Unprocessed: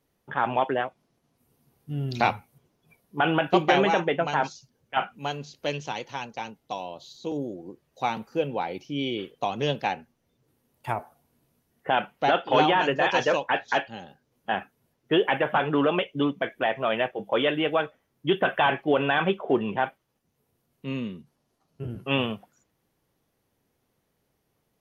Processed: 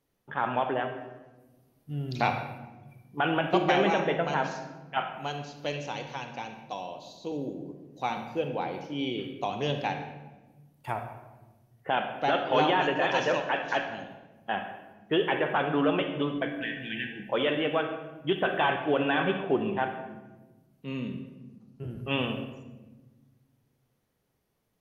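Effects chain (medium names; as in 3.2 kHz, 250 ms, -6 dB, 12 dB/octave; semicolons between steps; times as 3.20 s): spectral replace 16.63–17.20 s, 360–1500 Hz after; on a send: reverberation RT60 1.2 s, pre-delay 39 ms, DRR 6 dB; on the sum: trim -4 dB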